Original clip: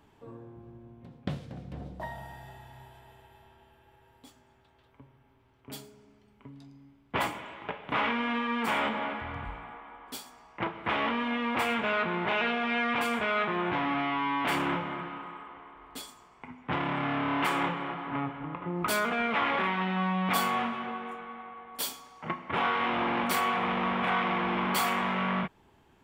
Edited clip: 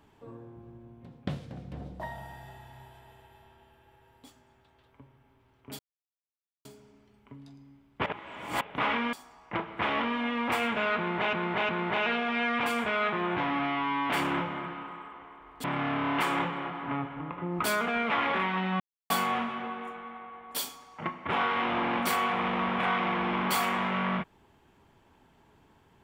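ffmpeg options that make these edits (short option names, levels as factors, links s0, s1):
-filter_complex "[0:a]asplit=10[s0][s1][s2][s3][s4][s5][s6][s7][s8][s9];[s0]atrim=end=5.79,asetpts=PTS-STARTPTS,afade=t=out:st=5.786:d=0.004:c=hsin,apad=pad_dur=0.86[s10];[s1]atrim=start=5.79:end=7.202,asetpts=PTS-STARTPTS,afade=t=in:d=0.004:c=hsin[s11];[s2]atrim=start=7.198:end=7.752,asetpts=PTS-STARTPTS,areverse[s12];[s3]atrim=start=7.748:end=8.272[s13];[s4]atrim=start=10.198:end=12.402[s14];[s5]atrim=start=12.038:end=12.402[s15];[s6]atrim=start=12.038:end=15.992[s16];[s7]atrim=start=16.878:end=20.04,asetpts=PTS-STARTPTS,afade=t=out:st=3.158:d=0.004:c=hsin[s17];[s8]atrim=start=20.04:end=20.34,asetpts=PTS-STARTPTS,volume=0[s18];[s9]atrim=start=20.34,asetpts=PTS-STARTPTS,afade=t=in:d=0.004:c=hsin[s19];[s10][s11]concat=n=2:v=0:a=1[s20];[s20][s12]acrossfade=d=0.004:c1=hsin:c2=hsin[s21];[s21][s13]acrossfade=d=0.004:c1=hsin:c2=hsin[s22];[s22][s14]acrossfade=d=0.004:c1=hsin:c2=hsin[s23];[s23][s15]acrossfade=d=0.004:c1=hsin:c2=hsin[s24];[s24][s16]acrossfade=d=0.004:c1=hsin:c2=hsin[s25];[s17][s18][s19]concat=n=3:v=0:a=1[s26];[s25][s26]acrossfade=d=0.004:c1=hsin:c2=hsin"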